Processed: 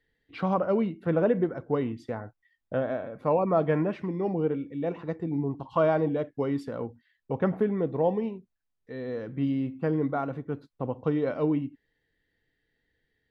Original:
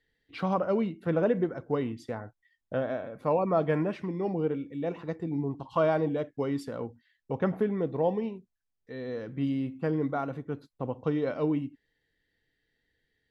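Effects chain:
high-shelf EQ 4,700 Hz −11 dB
level +2 dB

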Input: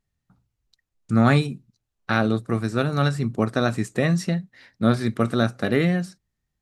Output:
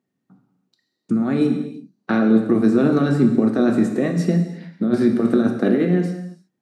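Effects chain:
high-pass filter 160 Hz 24 dB per octave
high-shelf EQ 2,100 Hz −8 dB
compressor whose output falls as the input rises −25 dBFS, ratio −1
parametric band 290 Hz +11 dB 1.4 octaves
reverb whose tail is shaped and stops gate 370 ms falling, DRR 3.5 dB

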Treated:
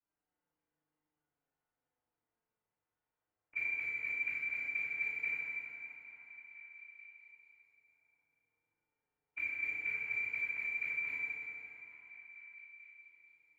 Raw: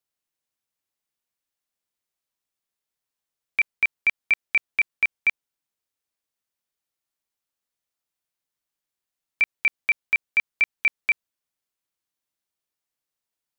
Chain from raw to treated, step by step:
every overlapping window played backwards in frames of 77 ms
low-pass that shuts in the quiet parts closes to 2,000 Hz, open at −22.5 dBFS
gate on every frequency bin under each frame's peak −30 dB strong
treble cut that deepens with the level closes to 1,300 Hz, closed at −26.5 dBFS
in parallel at −10 dB: wrap-around overflow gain 33 dB
on the sum: high-frequency loss of the air 450 metres
feedback delay network reverb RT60 3.3 s, high-frequency decay 0.75×, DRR −7.5 dB
flanger 0.16 Hz, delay 4.9 ms, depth 4.9 ms, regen +55%
on a send: echo through a band-pass that steps 439 ms, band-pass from 630 Hz, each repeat 0.7 octaves, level −10 dB
on the sum: level +3 dB

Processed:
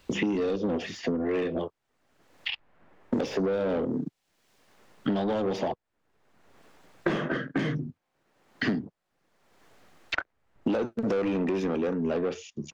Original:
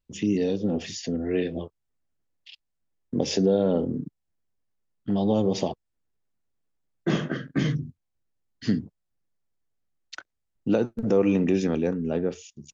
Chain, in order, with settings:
mid-hump overdrive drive 23 dB, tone 1,300 Hz, clips at −9.5 dBFS
multiband upward and downward compressor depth 100%
level −8 dB

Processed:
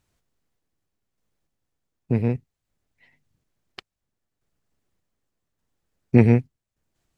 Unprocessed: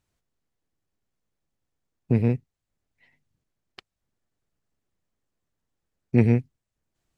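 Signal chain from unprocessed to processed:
sample-and-hold tremolo 3.4 Hz
dynamic equaliser 960 Hz, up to +4 dB, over −37 dBFS, Q 0.75
level +5.5 dB

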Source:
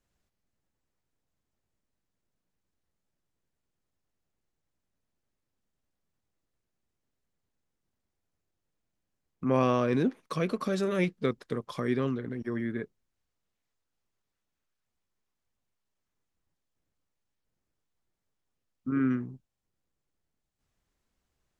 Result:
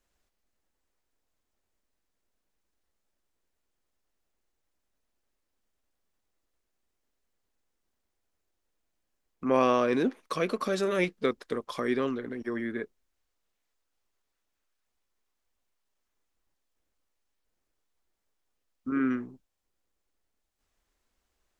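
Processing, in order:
parametric band 130 Hz −14.5 dB 1.2 octaves
level +3.5 dB

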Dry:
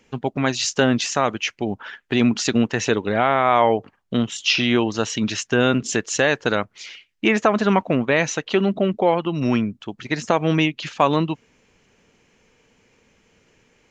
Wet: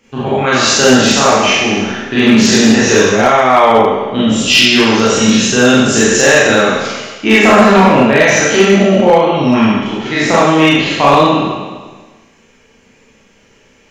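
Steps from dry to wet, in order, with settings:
peak hold with a decay on every bin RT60 1.41 s
four-comb reverb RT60 0.42 s, combs from 28 ms, DRR −6 dB
hard clipping −2 dBFS, distortion −21 dB
level +1 dB

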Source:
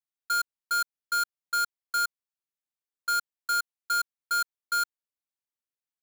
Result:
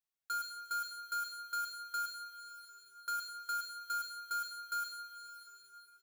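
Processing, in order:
comb filter 7.1 ms, depth 50%
coupled-rooms reverb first 0.66 s, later 3.5 s, from −18 dB, DRR 2.5 dB
downward compressor 2 to 1, threshold −43 dBFS, peak gain reduction 13.5 dB
level −4 dB

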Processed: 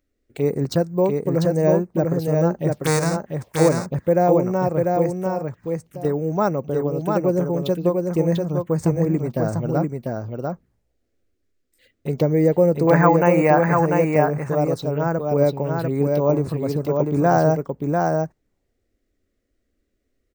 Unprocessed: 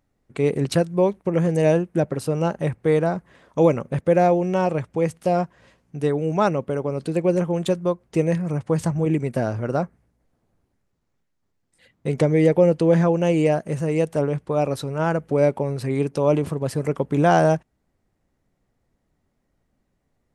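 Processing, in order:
0:02.71–0:03.15: spectral envelope flattened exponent 0.3
0:12.87–0:13.86: flat-topped bell 1,500 Hz +14 dB 2.3 octaves
bad sample-rate conversion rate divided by 2×, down filtered, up hold
phaser swept by the level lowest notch 150 Hz, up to 3,100 Hz, full sweep at −19.5 dBFS
0:05.15–0:06.05: downward compressor 2 to 1, threshold −38 dBFS, peak gain reduction 11.5 dB
single-tap delay 695 ms −3.5 dB

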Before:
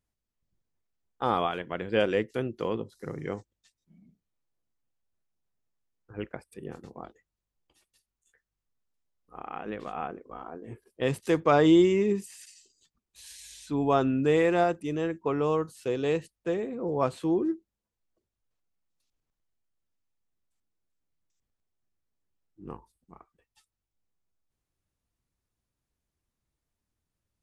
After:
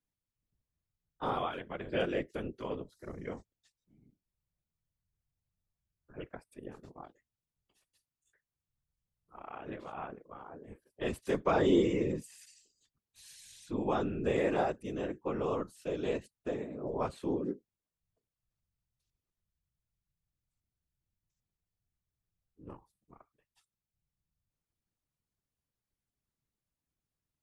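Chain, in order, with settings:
random phases in short frames
level −7 dB

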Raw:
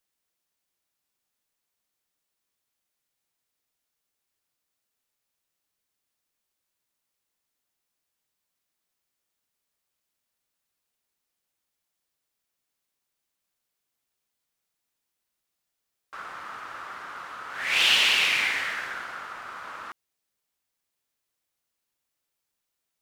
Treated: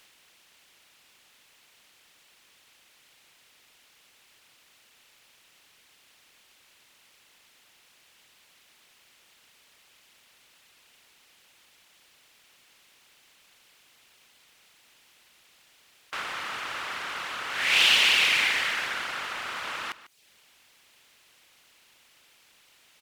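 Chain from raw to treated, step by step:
compressor on every frequency bin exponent 0.6
reverb reduction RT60 0.58 s
single-tap delay 147 ms −16.5 dB

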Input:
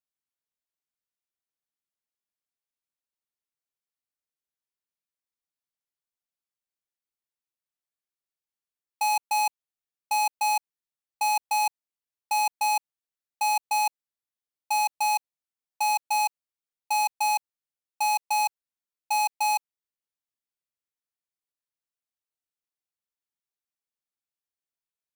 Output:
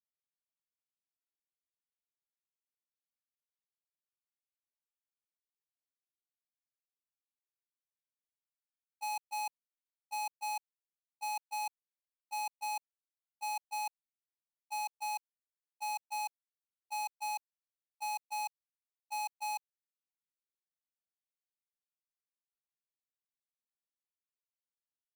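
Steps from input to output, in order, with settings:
noise gate −23 dBFS, range −36 dB
level +5.5 dB

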